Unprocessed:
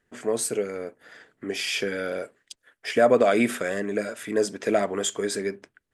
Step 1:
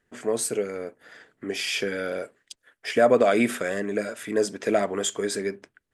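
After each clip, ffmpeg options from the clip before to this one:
-af anull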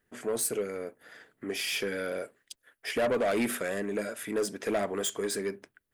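-af "asoftclip=type=tanh:threshold=0.1,aexciter=amount=3.3:drive=3.4:freq=9900,volume=0.708"

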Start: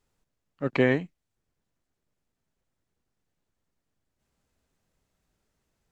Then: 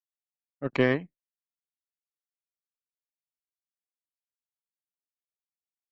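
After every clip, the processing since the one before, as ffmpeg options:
-af "aeval=exprs='0.316*(cos(1*acos(clip(val(0)/0.316,-1,1)))-cos(1*PI/2))+0.0251*(cos(3*acos(clip(val(0)/0.316,-1,1)))-cos(3*PI/2))+0.01*(cos(7*acos(clip(val(0)/0.316,-1,1)))-cos(7*PI/2))':c=same,afftdn=nr=17:nf=-53,agate=range=0.0224:threshold=0.00562:ratio=3:detection=peak"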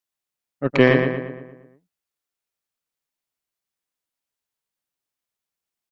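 -filter_complex "[0:a]asplit=2[s0][s1];[s1]adelay=116,lowpass=f=3000:p=1,volume=0.562,asplit=2[s2][s3];[s3]adelay=116,lowpass=f=3000:p=1,volume=0.53,asplit=2[s4][s5];[s5]adelay=116,lowpass=f=3000:p=1,volume=0.53,asplit=2[s6][s7];[s7]adelay=116,lowpass=f=3000:p=1,volume=0.53,asplit=2[s8][s9];[s9]adelay=116,lowpass=f=3000:p=1,volume=0.53,asplit=2[s10][s11];[s11]adelay=116,lowpass=f=3000:p=1,volume=0.53,asplit=2[s12][s13];[s13]adelay=116,lowpass=f=3000:p=1,volume=0.53[s14];[s0][s2][s4][s6][s8][s10][s12][s14]amix=inputs=8:normalize=0,volume=2.66"

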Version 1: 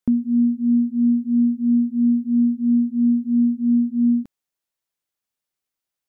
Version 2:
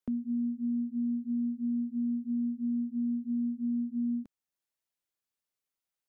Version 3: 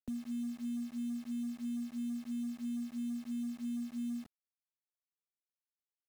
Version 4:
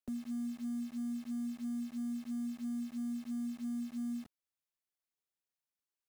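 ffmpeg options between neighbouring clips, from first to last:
-filter_complex "[0:a]acrossover=split=180[s0][s1];[s0]acompressor=threshold=0.01:ratio=6[s2];[s1]alimiter=limit=0.0708:level=0:latency=1:release=460[s3];[s2][s3]amix=inputs=2:normalize=0,volume=0.531"
-filter_complex "[0:a]acrossover=split=150[s0][s1];[s0]acontrast=49[s2];[s2][s1]amix=inputs=2:normalize=0,acrusher=bits=7:mix=0:aa=0.000001,volume=0.398"
-af "asoftclip=type=hard:threshold=0.0188"

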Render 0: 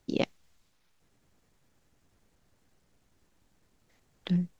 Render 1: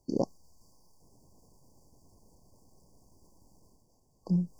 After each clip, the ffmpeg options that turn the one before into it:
-af "afftfilt=real='re*(1-between(b*sr/4096,1100,4500))':imag='im*(1-between(b*sr/4096,1100,4500))':win_size=4096:overlap=0.75,areverse,acompressor=mode=upward:threshold=0.00316:ratio=2.5,areverse"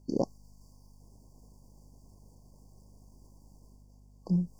-af "aeval=exprs='val(0)+0.00158*(sin(2*PI*50*n/s)+sin(2*PI*2*50*n/s)/2+sin(2*PI*3*50*n/s)/3+sin(2*PI*4*50*n/s)/4+sin(2*PI*5*50*n/s)/5)':c=same"

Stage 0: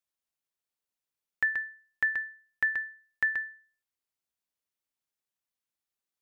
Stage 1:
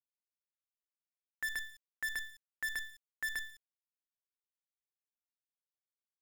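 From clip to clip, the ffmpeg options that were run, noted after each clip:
-af "acompressor=threshold=0.0355:ratio=2,acrusher=bits=6:dc=4:mix=0:aa=0.000001,alimiter=level_in=1.78:limit=0.0631:level=0:latency=1:release=17,volume=0.562,volume=0.841"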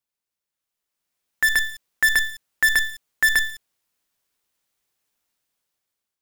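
-af "dynaudnorm=f=430:g=5:m=3.76,volume=2.51"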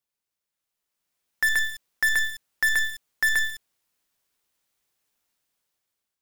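-af "asoftclip=type=hard:threshold=0.133"

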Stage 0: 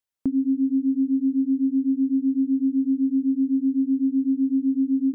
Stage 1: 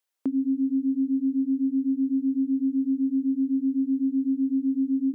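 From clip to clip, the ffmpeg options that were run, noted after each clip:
-filter_complex "[0:a]asplit=2[s0][s1];[s1]alimiter=level_in=1.06:limit=0.0631:level=0:latency=1:release=279,volume=0.944,volume=0.794[s2];[s0][s2]amix=inputs=2:normalize=0,highpass=330"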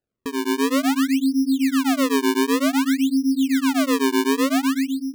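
-af "dynaudnorm=f=130:g=7:m=2.82,acrusher=samples=38:mix=1:aa=0.000001:lfo=1:lforange=60.8:lforate=0.54,volume=0.631"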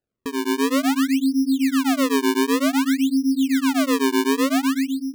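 -af anull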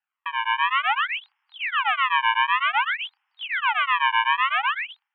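-af "asuperpass=centerf=1600:order=20:qfactor=0.67,volume=2.24"

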